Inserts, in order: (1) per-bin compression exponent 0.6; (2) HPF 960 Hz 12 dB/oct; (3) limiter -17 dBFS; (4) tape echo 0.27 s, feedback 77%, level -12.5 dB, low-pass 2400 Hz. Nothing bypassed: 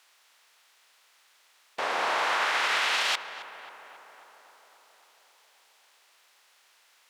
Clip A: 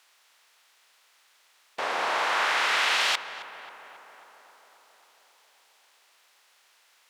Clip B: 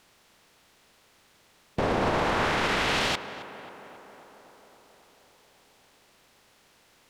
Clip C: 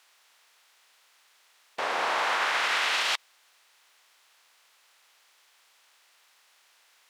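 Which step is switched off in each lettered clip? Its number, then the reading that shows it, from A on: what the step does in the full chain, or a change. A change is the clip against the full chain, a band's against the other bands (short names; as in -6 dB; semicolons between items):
3, crest factor change +2.0 dB; 2, 250 Hz band +20.0 dB; 4, momentary loudness spread change -11 LU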